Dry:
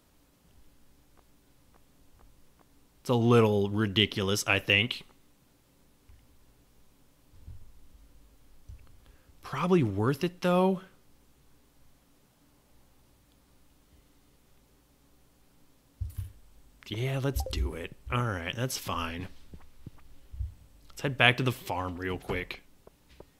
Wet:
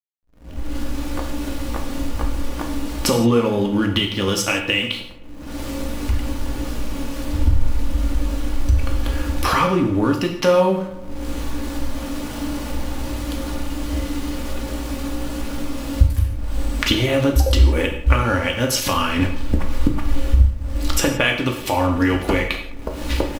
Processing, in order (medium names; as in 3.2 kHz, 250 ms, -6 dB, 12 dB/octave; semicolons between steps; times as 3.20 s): recorder AGC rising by 39 dB/s; comb 3.5 ms, depth 45%; in parallel at -1.5 dB: compression, threshold -29 dBFS, peak gain reduction 19.5 dB; on the sum: hysteresis with a dead band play -32 dBFS; on a send: filtered feedback delay 104 ms, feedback 67%, low-pass 2.5 kHz, level -18 dB; on the sum: gated-style reverb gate 200 ms falling, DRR 2 dB; trim -1.5 dB